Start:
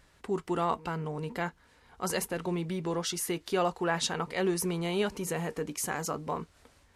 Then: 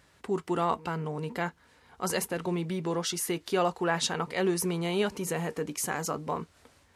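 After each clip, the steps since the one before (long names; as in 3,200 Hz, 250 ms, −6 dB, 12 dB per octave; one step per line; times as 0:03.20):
high-pass filter 71 Hz
level +1.5 dB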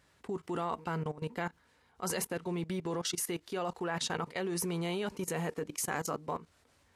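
output level in coarse steps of 17 dB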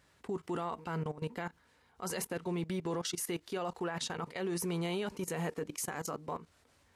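brickwall limiter −27 dBFS, peak gain reduction 8.5 dB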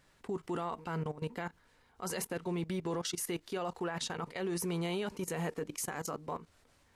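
background noise brown −73 dBFS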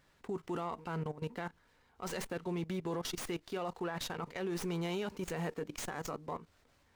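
windowed peak hold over 3 samples
level −1.5 dB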